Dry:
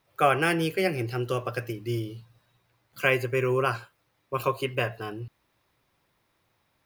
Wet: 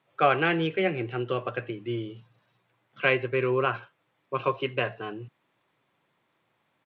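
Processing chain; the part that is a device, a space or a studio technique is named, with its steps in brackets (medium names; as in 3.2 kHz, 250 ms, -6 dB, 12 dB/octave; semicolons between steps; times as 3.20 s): Bluetooth headset (high-pass 130 Hz 24 dB/octave; resampled via 8 kHz; SBC 64 kbps 32 kHz)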